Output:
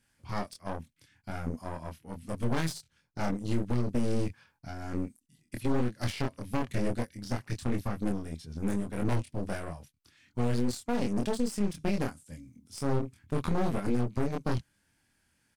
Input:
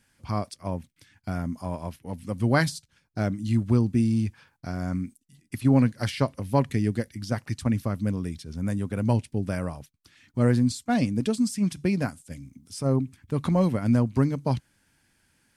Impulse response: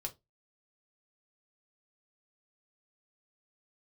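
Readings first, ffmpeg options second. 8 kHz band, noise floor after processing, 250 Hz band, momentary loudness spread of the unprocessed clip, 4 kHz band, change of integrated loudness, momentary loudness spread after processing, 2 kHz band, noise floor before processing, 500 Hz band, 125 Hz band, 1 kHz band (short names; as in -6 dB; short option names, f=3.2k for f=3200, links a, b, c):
-4.5 dB, -73 dBFS, -7.0 dB, 14 LU, -4.5 dB, -7.0 dB, 12 LU, -6.5 dB, -69 dBFS, -4.5 dB, -8.5 dB, -4.5 dB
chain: -filter_complex "[0:a]aeval=exprs='0.335*(cos(1*acos(clip(val(0)/0.335,-1,1)))-cos(1*PI/2))+0.15*(cos(4*acos(clip(val(0)/0.335,-1,1)))-cos(4*PI/2))+0.0188*(cos(6*acos(clip(val(0)/0.335,-1,1)))-cos(6*PI/2))':c=same,asplit=2[a][b];[b]adelay=25,volume=-2.5dB[c];[a][c]amix=inputs=2:normalize=0,asplit=2[d][e];[e]acrusher=bits=3:mix=0:aa=0.5,volume=-7dB[f];[d][f]amix=inputs=2:normalize=0,alimiter=limit=-10.5dB:level=0:latency=1:release=116,volume=-7.5dB"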